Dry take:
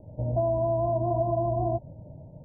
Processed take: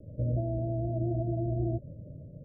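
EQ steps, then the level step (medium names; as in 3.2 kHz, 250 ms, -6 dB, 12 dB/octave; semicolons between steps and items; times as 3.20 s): steep low-pass 590 Hz 72 dB/octave; 0.0 dB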